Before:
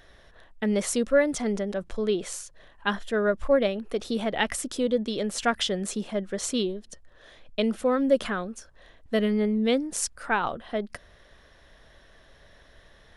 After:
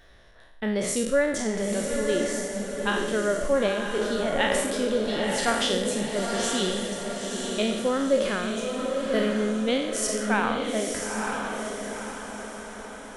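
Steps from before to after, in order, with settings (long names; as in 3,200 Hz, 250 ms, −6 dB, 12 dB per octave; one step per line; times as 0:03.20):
peak hold with a decay on every bin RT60 0.78 s
feedback delay with all-pass diffusion 938 ms, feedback 49%, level −3.5 dB
level −2.5 dB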